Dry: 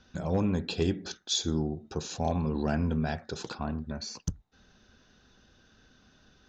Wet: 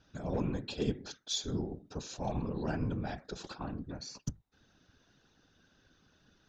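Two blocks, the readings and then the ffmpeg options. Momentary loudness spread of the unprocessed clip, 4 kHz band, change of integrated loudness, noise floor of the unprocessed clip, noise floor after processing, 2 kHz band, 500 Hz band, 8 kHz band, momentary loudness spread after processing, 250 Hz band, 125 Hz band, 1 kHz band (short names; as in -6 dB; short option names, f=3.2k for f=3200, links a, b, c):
9 LU, -6.0 dB, -6.0 dB, -63 dBFS, -70 dBFS, -6.5 dB, -5.5 dB, n/a, 9 LU, -6.5 dB, -6.0 dB, -6.0 dB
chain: -af "afftfilt=real='hypot(re,im)*cos(2*PI*random(0))':imag='hypot(re,im)*sin(2*PI*random(1))':win_size=512:overlap=0.75,aeval=exprs='0.112*(cos(1*acos(clip(val(0)/0.112,-1,1)))-cos(1*PI/2))+0.002*(cos(4*acos(clip(val(0)/0.112,-1,1)))-cos(4*PI/2))':c=same"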